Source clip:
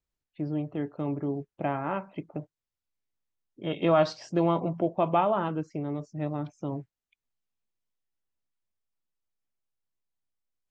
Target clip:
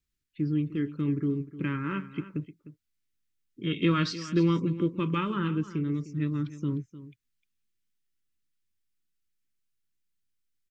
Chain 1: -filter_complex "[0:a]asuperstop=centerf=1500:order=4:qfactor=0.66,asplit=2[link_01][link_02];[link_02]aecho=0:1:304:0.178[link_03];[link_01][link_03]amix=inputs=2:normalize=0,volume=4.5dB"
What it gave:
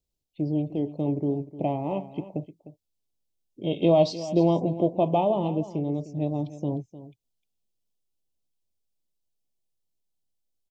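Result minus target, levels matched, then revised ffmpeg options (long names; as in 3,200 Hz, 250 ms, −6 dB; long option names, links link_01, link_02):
2,000 Hz band −14.0 dB
-filter_complex "[0:a]asuperstop=centerf=710:order=4:qfactor=0.66,asplit=2[link_01][link_02];[link_02]aecho=0:1:304:0.178[link_03];[link_01][link_03]amix=inputs=2:normalize=0,volume=4.5dB"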